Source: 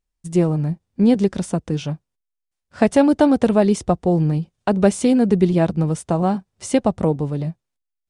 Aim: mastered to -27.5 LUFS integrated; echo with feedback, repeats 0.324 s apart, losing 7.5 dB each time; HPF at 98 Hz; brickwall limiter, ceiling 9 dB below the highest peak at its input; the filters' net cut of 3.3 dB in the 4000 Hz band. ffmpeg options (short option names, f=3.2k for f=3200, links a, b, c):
-af "highpass=98,equalizer=f=4k:t=o:g=-4.5,alimiter=limit=-13dB:level=0:latency=1,aecho=1:1:324|648|972|1296|1620:0.422|0.177|0.0744|0.0312|0.0131,volume=-4.5dB"